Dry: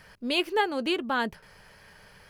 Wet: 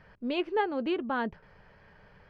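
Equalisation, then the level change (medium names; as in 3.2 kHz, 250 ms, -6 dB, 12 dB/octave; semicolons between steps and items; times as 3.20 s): tape spacing loss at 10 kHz 35 dB; 0.0 dB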